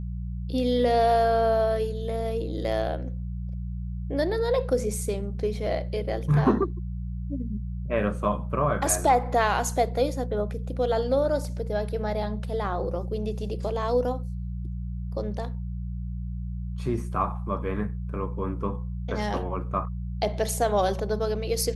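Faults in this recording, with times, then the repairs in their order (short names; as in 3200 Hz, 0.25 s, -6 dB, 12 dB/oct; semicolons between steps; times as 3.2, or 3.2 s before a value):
hum 60 Hz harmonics 3 -32 dBFS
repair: de-hum 60 Hz, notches 3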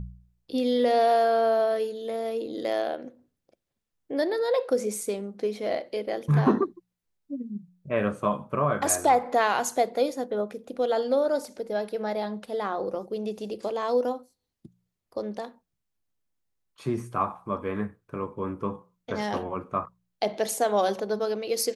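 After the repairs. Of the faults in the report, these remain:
none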